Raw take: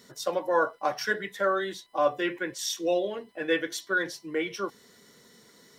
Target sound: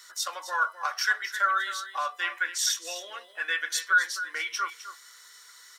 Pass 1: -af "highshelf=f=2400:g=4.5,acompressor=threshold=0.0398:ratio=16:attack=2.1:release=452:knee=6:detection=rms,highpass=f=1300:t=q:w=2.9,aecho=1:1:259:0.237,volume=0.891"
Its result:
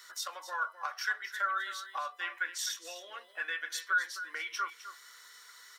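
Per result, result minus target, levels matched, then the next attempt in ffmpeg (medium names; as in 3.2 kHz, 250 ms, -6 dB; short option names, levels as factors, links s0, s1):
compression: peak gain reduction +8 dB; 8 kHz band -2.0 dB
-af "highshelf=f=2400:g=4.5,acompressor=threshold=0.106:ratio=16:attack=2.1:release=452:knee=6:detection=rms,highpass=f=1300:t=q:w=2.9,aecho=1:1:259:0.237,volume=0.891"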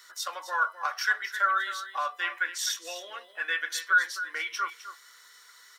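8 kHz band -4.0 dB
-af "highshelf=f=2400:g=4.5,acompressor=threshold=0.106:ratio=16:attack=2.1:release=452:knee=6:detection=rms,highpass=f=1300:t=q:w=2.9,equalizer=f=7600:t=o:w=1.6:g=5.5,aecho=1:1:259:0.237,volume=0.891"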